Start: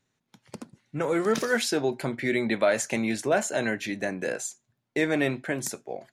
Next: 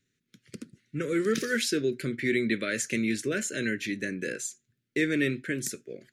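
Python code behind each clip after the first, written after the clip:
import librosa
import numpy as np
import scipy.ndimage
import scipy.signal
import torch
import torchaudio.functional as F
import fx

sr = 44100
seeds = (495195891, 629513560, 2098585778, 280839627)

y = scipy.signal.sosfilt(scipy.signal.cheby1(2, 1.0, [400.0, 1700.0], 'bandstop', fs=sr, output='sos'), x)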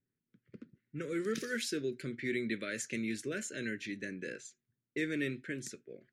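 y = fx.env_lowpass(x, sr, base_hz=1200.0, full_db=-25.5)
y = y * 10.0 ** (-8.5 / 20.0)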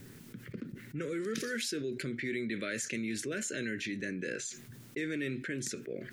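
y = fx.env_flatten(x, sr, amount_pct=70)
y = y * 10.0 ** (-2.5 / 20.0)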